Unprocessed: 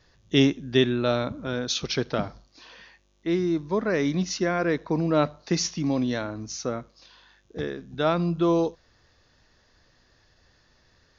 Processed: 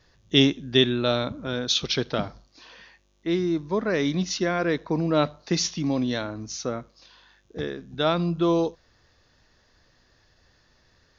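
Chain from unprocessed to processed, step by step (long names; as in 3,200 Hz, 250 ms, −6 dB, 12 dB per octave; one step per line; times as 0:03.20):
dynamic equaliser 3,500 Hz, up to +7 dB, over −46 dBFS, Q 2.3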